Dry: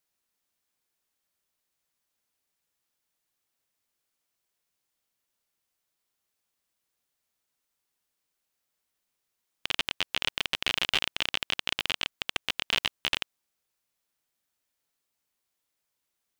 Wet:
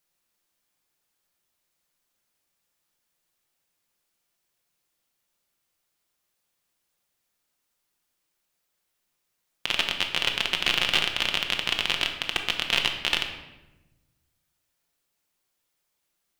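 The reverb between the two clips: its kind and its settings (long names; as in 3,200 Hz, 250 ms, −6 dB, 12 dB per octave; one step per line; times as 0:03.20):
rectangular room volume 520 cubic metres, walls mixed, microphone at 0.88 metres
level +3 dB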